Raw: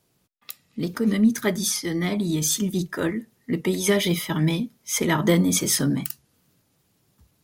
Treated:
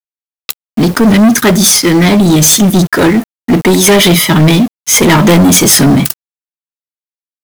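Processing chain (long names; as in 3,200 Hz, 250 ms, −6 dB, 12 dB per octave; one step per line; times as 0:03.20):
leveller curve on the samples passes 5
bit reduction 6 bits
level +3.5 dB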